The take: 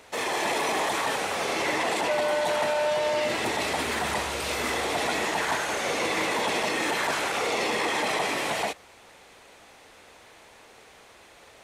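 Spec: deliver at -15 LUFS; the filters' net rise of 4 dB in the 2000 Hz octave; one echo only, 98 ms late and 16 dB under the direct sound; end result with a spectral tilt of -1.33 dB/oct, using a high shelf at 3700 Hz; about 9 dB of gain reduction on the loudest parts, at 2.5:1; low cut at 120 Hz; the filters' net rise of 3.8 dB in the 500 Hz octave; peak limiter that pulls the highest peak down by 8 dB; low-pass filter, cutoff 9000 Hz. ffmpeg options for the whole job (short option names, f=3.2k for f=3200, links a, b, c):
-af "highpass=120,lowpass=9k,equalizer=f=500:t=o:g=4.5,equalizer=f=2k:t=o:g=3,highshelf=f=3.7k:g=5.5,acompressor=threshold=-33dB:ratio=2.5,alimiter=level_in=4dB:limit=-24dB:level=0:latency=1,volume=-4dB,aecho=1:1:98:0.158,volume=20.5dB"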